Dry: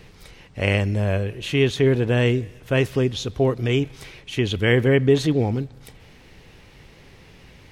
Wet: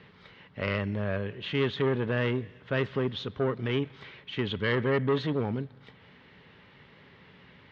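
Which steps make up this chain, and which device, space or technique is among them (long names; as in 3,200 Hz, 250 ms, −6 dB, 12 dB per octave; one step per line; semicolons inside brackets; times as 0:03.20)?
guitar amplifier (tube saturation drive 16 dB, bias 0.25; bass and treble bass −6 dB, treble −3 dB; loudspeaker in its box 110–3,500 Hz, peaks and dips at 190 Hz +3 dB, 330 Hz −8 dB, 500 Hz −5 dB, 730 Hz −8 dB, 2,500 Hz −7 dB)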